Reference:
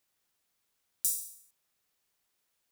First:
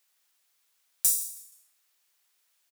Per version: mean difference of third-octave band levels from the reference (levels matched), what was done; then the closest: 2.5 dB: high-pass 1.3 kHz 6 dB/octave; in parallel at -4 dB: overload inside the chain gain 23 dB; on the sum: frequency-shifting echo 158 ms, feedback 34%, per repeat -93 Hz, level -19 dB; trim +3 dB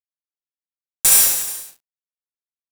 17.0 dB: treble shelf 2.7 kHz -9 dB; fuzz box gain 50 dB, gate -53 dBFS; on a send: reverse bouncing-ball echo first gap 70 ms, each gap 1.1×, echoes 5; on the sum: trim +4 dB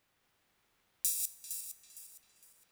4.5 dB: backward echo that repeats 230 ms, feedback 54%, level -4 dB; tone controls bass +3 dB, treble -11 dB; band-passed feedback delay 394 ms, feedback 55%, band-pass 2.3 kHz, level -9.5 dB; trim +8 dB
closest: first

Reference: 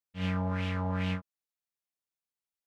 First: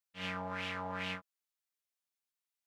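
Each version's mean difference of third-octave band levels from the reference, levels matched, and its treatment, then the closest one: 6.0 dB: high-pass 900 Hz 6 dB/octave; trim +1 dB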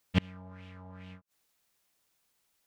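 9.5 dB: inverted gate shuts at -30 dBFS, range -35 dB; trim +18 dB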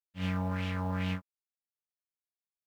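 2.0 dB: companding laws mixed up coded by A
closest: third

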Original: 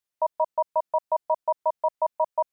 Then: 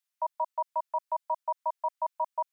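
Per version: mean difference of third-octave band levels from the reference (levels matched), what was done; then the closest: 2.0 dB: Bessel high-pass 1.2 kHz, order 4; trim +1 dB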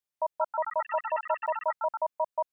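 3.5 dB: ever faster or slower copies 257 ms, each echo +6 st, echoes 3, each echo -6 dB; trim -5 dB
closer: first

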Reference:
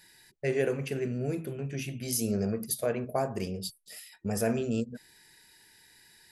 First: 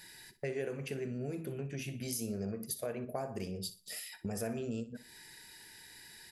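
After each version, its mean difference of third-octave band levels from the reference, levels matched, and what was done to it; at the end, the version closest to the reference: 5.0 dB: compression 3:1, threshold -44 dBFS, peak gain reduction 15 dB; on a send: feedback delay 61 ms, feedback 27%, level -15 dB; on the sum: trim +4.5 dB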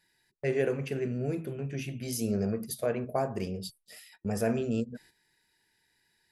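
3.0 dB: gate -54 dBFS, range -11 dB; treble shelf 4.7 kHz -7 dB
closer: second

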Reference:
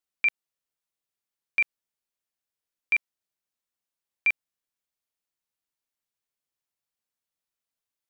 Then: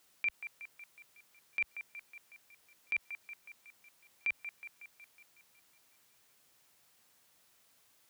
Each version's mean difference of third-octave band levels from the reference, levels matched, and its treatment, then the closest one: 2.0 dB: high-pass 64 Hz; compressor with a negative ratio -29 dBFS, ratio -0.5; peak limiter -35 dBFS, peak gain reduction 11.5 dB; on a send: feedback echo behind a band-pass 184 ms, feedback 61%, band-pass 1.2 kHz, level -8 dB; on the sum: trim +9 dB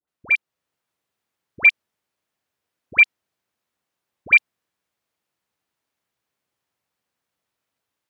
7.5 dB: high-pass 64 Hz 24 dB/octave; treble shelf 3.5 kHz -11.5 dB; level rider gain up to 6 dB; phase dispersion highs, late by 80 ms, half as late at 1.1 kHz; trim +8.5 dB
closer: first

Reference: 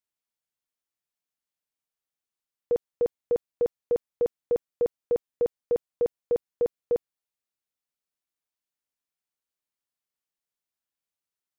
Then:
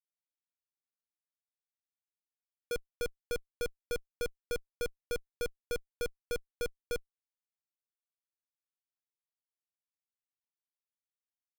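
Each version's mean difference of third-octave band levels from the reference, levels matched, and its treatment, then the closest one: 11.5 dB: Schmitt trigger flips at -31 dBFS; trim +1 dB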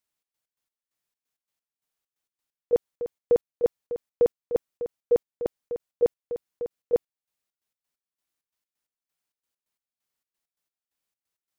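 3.5 dB: trance gate "xx.x.x.." 132 bpm -12 dB; trim +5 dB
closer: second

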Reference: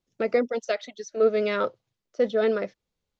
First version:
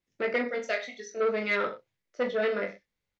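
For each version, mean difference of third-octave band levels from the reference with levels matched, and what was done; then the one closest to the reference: 5.0 dB: peaking EQ 2 kHz +10.5 dB 0.7 oct; on a send: reverse bouncing-ball echo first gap 20 ms, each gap 1.1×, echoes 5; on the sum: transformer saturation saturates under 970 Hz; trim -6 dB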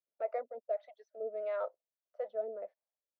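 8.0 dB: in parallel at 0 dB: gain riding within 4 dB 0.5 s; on the sum: ladder band-pass 700 Hz, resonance 70%; harmonic tremolo 1.6 Hz, depth 100%, crossover 480 Hz; trim -5 dB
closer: first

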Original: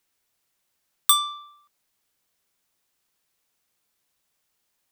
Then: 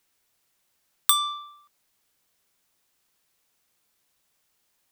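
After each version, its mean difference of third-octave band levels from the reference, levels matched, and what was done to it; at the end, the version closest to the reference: 1.0 dB: compression 3:1, threshold -20 dBFS, peak gain reduction 6.5 dB; trim +3 dB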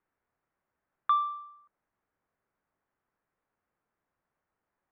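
5.0 dB: low-pass 1.7 kHz 24 dB/octave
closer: first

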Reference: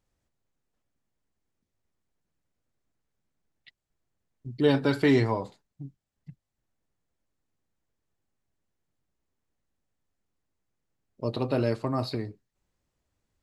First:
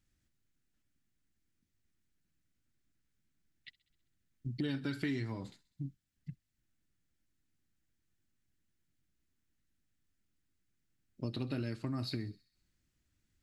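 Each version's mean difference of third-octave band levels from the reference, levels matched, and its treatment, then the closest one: 4.5 dB: high-order bell 690 Hz -12 dB; compression 6:1, threshold -35 dBFS, peak gain reduction 15.5 dB; feedback echo behind a high-pass 65 ms, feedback 62%, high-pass 3.3 kHz, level -18 dB; trim +1 dB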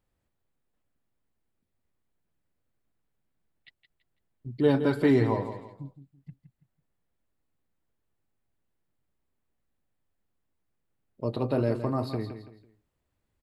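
3.0 dB: peaking EQ 6 kHz -8.5 dB 0.81 oct; feedback delay 166 ms, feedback 31%, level -10.5 dB; dynamic bell 2.8 kHz, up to -6 dB, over -45 dBFS, Q 0.81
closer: second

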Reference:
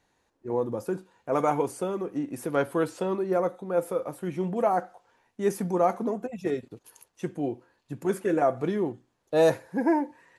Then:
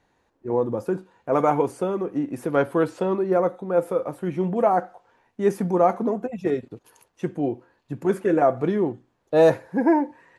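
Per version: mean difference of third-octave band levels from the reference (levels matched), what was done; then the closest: 2.0 dB: treble shelf 3.9 kHz -10.5 dB; trim +5 dB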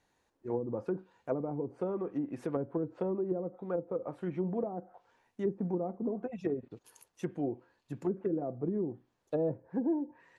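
6.5 dB: low-pass that closes with the level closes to 340 Hz, closed at -22.5 dBFS; trim -4 dB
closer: first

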